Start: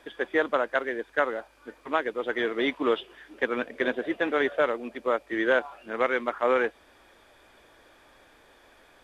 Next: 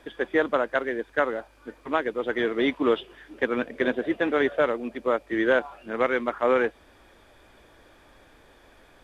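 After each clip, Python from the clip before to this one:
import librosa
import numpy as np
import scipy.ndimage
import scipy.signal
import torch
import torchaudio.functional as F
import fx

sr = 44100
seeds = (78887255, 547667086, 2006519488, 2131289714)

y = fx.low_shelf(x, sr, hz=270.0, db=9.0)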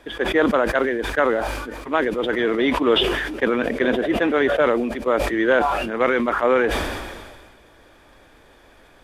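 y = fx.sustainer(x, sr, db_per_s=35.0)
y = y * 10.0 ** (3.5 / 20.0)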